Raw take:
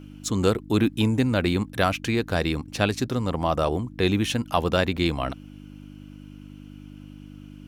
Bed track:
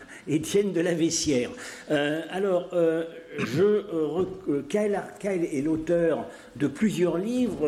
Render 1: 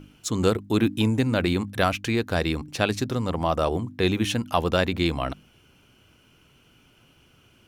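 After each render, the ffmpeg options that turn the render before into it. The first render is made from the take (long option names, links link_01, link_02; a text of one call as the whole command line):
ffmpeg -i in.wav -af "bandreject=frequency=50:width_type=h:width=4,bandreject=frequency=100:width_type=h:width=4,bandreject=frequency=150:width_type=h:width=4,bandreject=frequency=200:width_type=h:width=4,bandreject=frequency=250:width_type=h:width=4,bandreject=frequency=300:width_type=h:width=4" out.wav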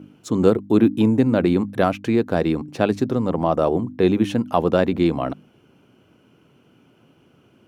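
ffmpeg -i in.wav -af "highpass=170,tiltshelf=frequency=1300:gain=8.5" out.wav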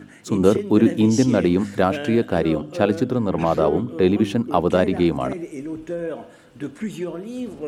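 ffmpeg -i in.wav -i bed.wav -filter_complex "[1:a]volume=-4.5dB[link_01];[0:a][link_01]amix=inputs=2:normalize=0" out.wav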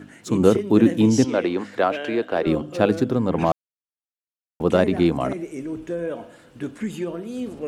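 ffmpeg -i in.wav -filter_complex "[0:a]asettb=1/sr,asplit=3[link_01][link_02][link_03];[link_01]atrim=end=1.244[link_04];[link_02]atrim=start=1.24:end=2.47,asetpts=PTS-STARTPTS,afade=type=in:duration=0.004:curve=qsin,afade=type=out:start_time=1.226:duration=0.004:curve=qsin,acrossover=split=320 4900:gain=0.141 1 0.251[link_05][link_06][link_07];[link_05][link_06][link_07]amix=inputs=3:normalize=0[link_08];[link_03]atrim=start=2.466[link_09];[link_04][link_08]acrossfade=duration=0.004:curve1=hsin:curve2=qsin[link_10];[link_10][link_09]acrossfade=duration=0.004:curve1=qsin:curve2=hsin,asplit=3[link_11][link_12][link_13];[link_11]atrim=end=3.52,asetpts=PTS-STARTPTS,afade=type=out:start_time=3.516:duration=0.004:curve=hsin[link_14];[link_12]atrim=start=3.52:end=4.6,asetpts=PTS-STARTPTS,volume=0[link_15];[link_13]atrim=start=4.6,asetpts=PTS-STARTPTS,afade=type=in:duration=0.004:curve=hsin[link_16];[link_14][link_15][link_16]concat=n=3:v=0:a=1" out.wav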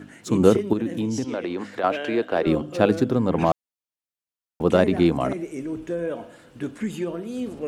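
ffmpeg -i in.wav -filter_complex "[0:a]asettb=1/sr,asplit=3[link_01][link_02][link_03];[link_01]atrim=end=0.734[link_04];[link_02]atrim=start=0.73:end=1.84,asetpts=PTS-STARTPTS,afade=type=in:duration=0.004:curve=qsin,afade=type=out:start_time=1.106:duration=0.004:curve=qsin,acompressor=threshold=-25dB:ratio=3:attack=3.2:release=140:knee=1:detection=peak[link_05];[link_03]atrim=start=1.836[link_06];[link_04][link_05]acrossfade=duration=0.004:curve1=hsin:curve2=qsin[link_07];[link_07][link_06]acrossfade=duration=0.004:curve1=qsin:curve2=hsin" out.wav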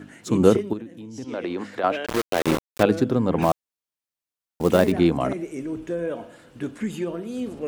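ffmpeg -i in.wav -filter_complex "[0:a]asettb=1/sr,asplit=3[link_01][link_02][link_03];[link_01]atrim=end=2.064[link_04];[link_02]atrim=start=2.06:end=2.83,asetpts=PTS-STARTPTS,afade=type=in:duration=0.004:curve=qsin,afade=type=out:start_time=0.766:duration=0.004:curve=qsin,aeval=exprs='val(0)*gte(abs(val(0)),0.106)':channel_layout=same[link_05];[link_03]atrim=start=2.826[link_06];[link_04][link_05]acrossfade=duration=0.004:curve1=hsin:curve2=qsin[link_07];[link_07][link_06]acrossfade=duration=0.004:curve1=qsin:curve2=hsin,asettb=1/sr,asplit=3[link_08][link_09][link_10];[link_08]atrim=end=3.424[link_11];[link_09]atrim=start=3.42:end=4.92,asetpts=PTS-STARTPTS,afade=type=in:duration=0.004:curve=qsin,afade=type=out:start_time=1.496:duration=0.004:curve=qsin,acrusher=bits=5:mode=log:mix=0:aa=0.000001[link_12];[link_10]atrim=start=4.916[link_13];[link_11][link_12]acrossfade=duration=0.004:curve1=hsin:curve2=qsin[link_14];[link_14][link_13]acrossfade=duration=0.004:curve1=qsin:curve2=hsin,asplit=3[link_15][link_16][link_17];[link_15]atrim=end=0.86,asetpts=PTS-STARTPTS,afade=type=out:start_time=0.56:duration=0.3:silence=0.211349[link_18];[link_16]atrim=start=0.86:end=1.13,asetpts=PTS-STARTPTS,volume=-13.5dB[link_19];[link_17]atrim=start=1.13,asetpts=PTS-STARTPTS,afade=type=in:duration=0.3:silence=0.211349[link_20];[link_18][link_19][link_20]concat=n=3:v=0:a=1" out.wav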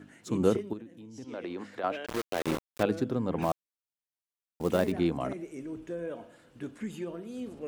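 ffmpeg -i in.wav -af "volume=-9dB" out.wav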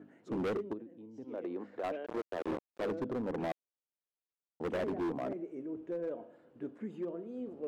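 ffmpeg -i in.wav -af "bandpass=frequency=440:width_type=q:width=0.92:csg=0,volume=31dB,asoftclip=hard,volume=-31dB" out.wav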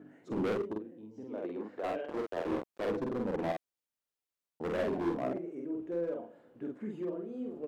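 ffmpeg -i in.wav -filter_complex "[0:a]asplit=2[link_01][link_02];[link_02]adelay=47,volume=-2dB[link_03];[link_01][link_03]amix=inputs=2:normalize=0" out.wav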